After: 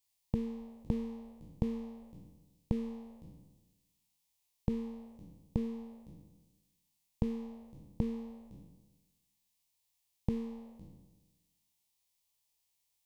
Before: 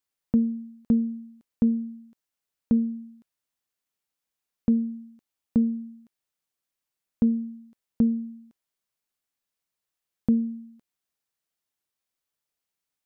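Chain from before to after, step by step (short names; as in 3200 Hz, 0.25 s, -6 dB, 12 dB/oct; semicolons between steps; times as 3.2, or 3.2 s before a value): spectral trails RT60 1.18 s; band shelf 530 Hz -9.5 dB 1.1 oct; fixed phaser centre 590 Hz, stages 4; gain +4.5 dB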